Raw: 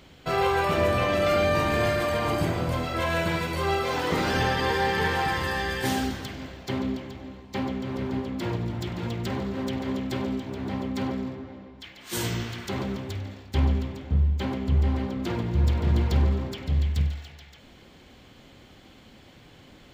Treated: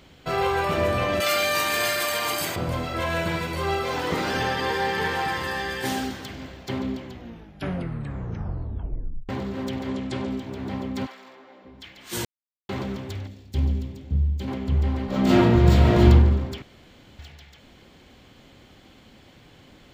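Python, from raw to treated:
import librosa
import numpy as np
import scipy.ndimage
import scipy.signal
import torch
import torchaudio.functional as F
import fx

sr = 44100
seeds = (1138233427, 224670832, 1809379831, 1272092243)

y = fx.tilt_eq(x, sr, slope=4.5, at=(1.2, 2.56))
y = fx.low_shelf(y, sr, hz=100.0, db=-10.0, at=(4.14, 6.29))
y = fx.steep_lowpass(y, sr, hz=10000.0, slope=36, at=(9.88, 10.3))
y = fx.highpass(y, sr, hz=fx.line((11.05, 1300.0), (11.64, 430.0)), slope=12, at=(11.05, 11.64), fade=0.02)
y = fx.peak_eq(y, sr, hz=1200.0, db=-12.0, octaves=2.6, at=(13.27, 14.48))
y = fx.reverb_throw(y, sr, start_s=15.06, length_s=0.99, rt60_s=0.88, drr_db=-11.0)
y = fx.edit(y, sr, fx.tape_stop(start_s=7.04, length_s=2.25),
    fx.silence(start_s=12.25, length_s=0.44),
    fx.room_tone_fill(start_s=16.62, length_s=0.57), tone=tone)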